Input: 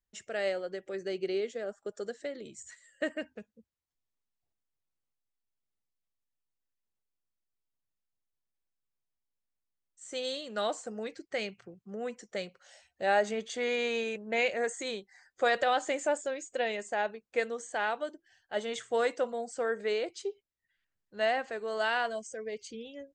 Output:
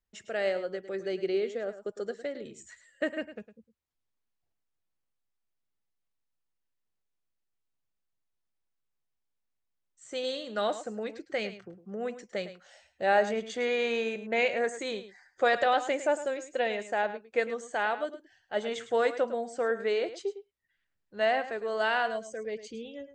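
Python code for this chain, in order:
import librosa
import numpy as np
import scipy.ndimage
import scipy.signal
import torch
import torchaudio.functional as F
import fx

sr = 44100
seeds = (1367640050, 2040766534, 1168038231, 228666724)

y = fx.lowpass(x, sr, hz=3800.0, slope=6)
y = y + 10.0 ** (-13.0 / 20.0) * np.pad(y, (int(106 * sr / 1000.0), 0))[:len(y)]
y = y * 10.0 ** (2.5 / 20.0)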